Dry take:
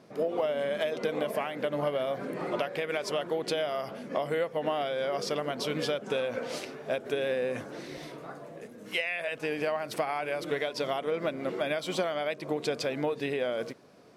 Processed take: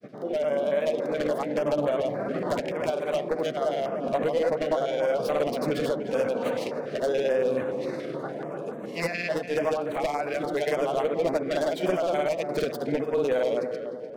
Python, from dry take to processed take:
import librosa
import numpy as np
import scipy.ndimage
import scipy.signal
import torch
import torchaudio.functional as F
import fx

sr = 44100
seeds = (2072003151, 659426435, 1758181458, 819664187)

p1 = fx.tracing_dist(x, sr, depth_ms=0.15)
p2 = scipy.signal.sosfilt(scipy.signal.butter(2, 120.0, 'highpass', fs=sr, output='sos'), p1)
p3 = fx.high_shelf(p2, sr, hz=3800.0, db=-10.5)
p4 = fx.rider(p3, sr, range_db=5, speed_s=0.5)
p5 = p3 + F.gain(torch.from_numpy(p4), 2.5).numpy()
p6 = 10.0 ** (-17.0 / 20.0) * (np.abs((p5 / 10.0 ** (-17.0 / 20.0) + 3.0) % 4.0 - 2.0) - 1.0)
p7 = fx.granulator(p6, sr, seeds[0], grain_ms=100.0, per_s=19.0, spray_ms=100.0, spread_st=0)
p8 = p7 + fx.echo_tape(p7, sr, ms=298, feedback_pct=52, wet_db=-3.5, lp_hz=1400.0, drive_db=23.0, wow_cents=20, dry=0)
y = fx.filter_held_notch(p8, sr, hz=7.0, low_hz=920.0, high_hz=5100.0)